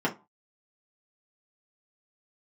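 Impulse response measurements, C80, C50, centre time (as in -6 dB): 23.5 dB, 15.5 dB, 11 ms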